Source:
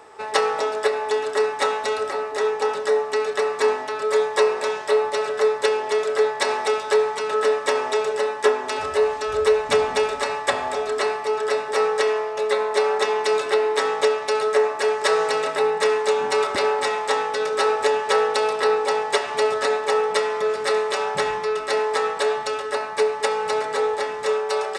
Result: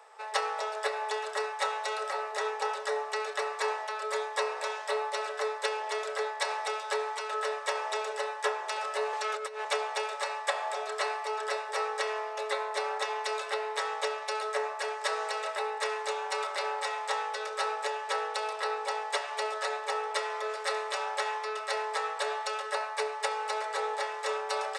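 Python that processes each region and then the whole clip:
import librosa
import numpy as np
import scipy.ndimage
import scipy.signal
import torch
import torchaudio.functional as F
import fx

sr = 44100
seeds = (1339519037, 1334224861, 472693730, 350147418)

y = fx.chain(x, sr, fx.steep_highpass(hz=270.0, slope=36),
    fx.over_compress(threshold_db=-24.0, ratio=-1.0),
    fx.transformer_sat(knee_hz=1000.0), at=(9.13, 9.65))
y = scipy.signal.sosfilt(scipy.signal.butter(6, 500.0, 'highpass', fs=sr, output='sos'), y)
y = fx.rider(y, sr, range_db=10, speed_s=0.5)
y = y * librosa.db_to_amplitude(-7.5)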